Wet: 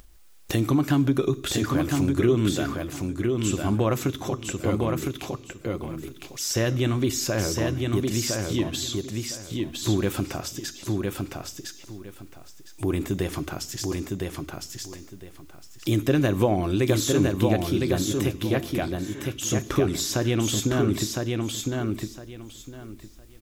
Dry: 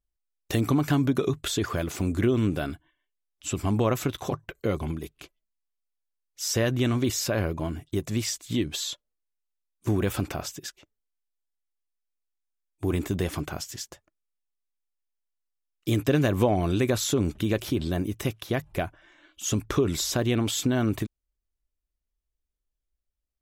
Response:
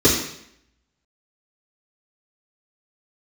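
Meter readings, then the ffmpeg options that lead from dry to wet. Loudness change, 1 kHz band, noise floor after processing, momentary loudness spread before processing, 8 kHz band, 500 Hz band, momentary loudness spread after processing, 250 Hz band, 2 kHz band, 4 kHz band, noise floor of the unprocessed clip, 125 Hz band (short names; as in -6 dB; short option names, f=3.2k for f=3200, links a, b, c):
+1.5 dB, +2.0 dB, -47 dBFS, 11 LU, +3.0 dB, +3.0 dB, 15 LU, +3.0 dB, +2.0 dB, +2.5 dB, -84 dBFS, +2.5 dB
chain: -filter_complex "[0:a]asplit=2[a][b];[1:a]atrim=start_sample=2205,afade=t=out:st=0.34:d=0.01,atrim=end_sample=15435,highshelf=f=3.9k:g=12[c];[b][c]afir=irnorm=-1:irlink=0,volume=-37.5dB[d];[a][d]amix=inputs=2:normalize=0,acompressor=mode=upward:threshold=-27dB:ratio=2.5,asplit=2[e][f];[f]aecho=0:1:1009|2018|3027:0.668|0.14|0.0295[g];[e][g]amix=inputs=2:normalize=0"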